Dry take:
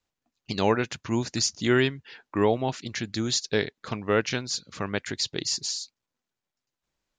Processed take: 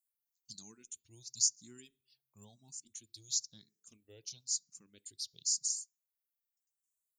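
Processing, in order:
first-order pre-emphasis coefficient 0.9
reverb reduction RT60 0.79 s
drawn EQ curve 180 Hz 0 dB, 1,800 Hz −24 dB, 8,200 Hz +14 dB
on a send at −17 dB: convolution reverb RT60 0.45 s, pre-delay 3 ms
on the sum: frequency shifter mixed with the dry sound +0.99 Hz
level −6 dB

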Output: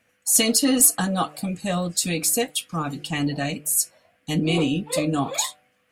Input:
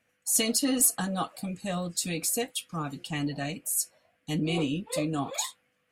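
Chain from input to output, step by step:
hum removal 149.7 Hz, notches 5
level +7 dB

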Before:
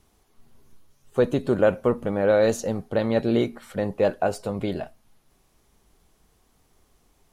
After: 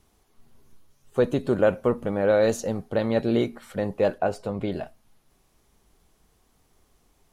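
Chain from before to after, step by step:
0:04.18–0:04.74: high-shelf EQ 5,500 Hz −9.5 dB
level −1 dB

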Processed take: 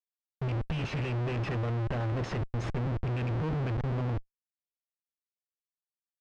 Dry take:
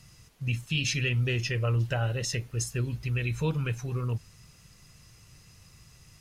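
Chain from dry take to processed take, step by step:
low-shelf EQ 120 Hz −7 dB
comparator with hysteresis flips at −38.5 dBFS
head-to-tape spacing loss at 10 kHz 34 dB
level +4.5 dB

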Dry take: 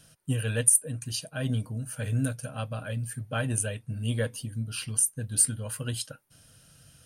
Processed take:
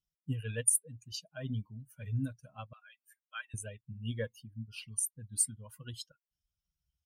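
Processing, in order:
spectral dynamics exaggerated over time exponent 2
0:02.73–0:03.54: high-pass filter 1,300 Hz 24 dB per octave
level −4.5 dB

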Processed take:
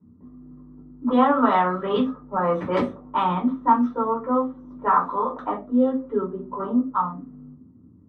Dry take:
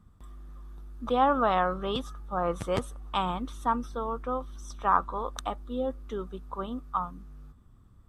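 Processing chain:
high-pass filter 99 Hz 24 dB per octave
low-pass that shuts in the quiet parts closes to 310 Hz, open at −21.5 dBFS
graphic EQ with 10 bands 250 Hz +11 dB, 500 Hz +4 dB, 1,000 Hz +10 dB, 2,000 Hz +11 dB, 4,000 Hz +7 dB
downward compressor 1.5 to 1, threshold −34 dBFS, peak gain reduction 10.5 dB
convolution reverb RT60 0.35 s, pre-delay 3 ms, DRR −4.5 dB
level −8.5 dB

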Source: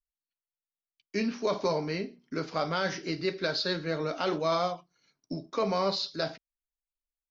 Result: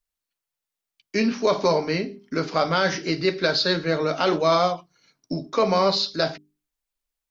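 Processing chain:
mains-hum notches 50/100/150/200/250/300/350/400 Hz
level +8.5 dB

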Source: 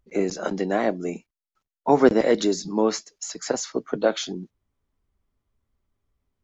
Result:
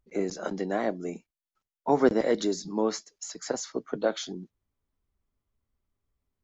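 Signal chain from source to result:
dynamic equaliser 2,600 Hz, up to −6 dB, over −54 dBFS, Q 5.5
level −5.5 dB

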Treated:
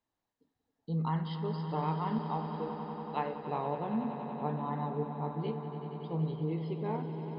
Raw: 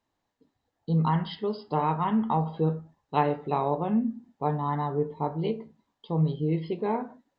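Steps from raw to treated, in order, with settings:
0:02.18–0:03.37: parametric band 180 Hz −12 dB 1.6 octaves
echo that builds up and dies away 94 ms, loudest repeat 5, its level −13 dB
level −8.5 dB

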